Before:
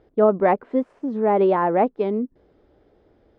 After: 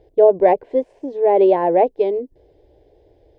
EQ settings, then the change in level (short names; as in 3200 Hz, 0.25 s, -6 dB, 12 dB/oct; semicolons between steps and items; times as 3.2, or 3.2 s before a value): low shelf 410 Hz +3 dB; fixed phaser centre 530 Hz, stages 4; +5.0 dB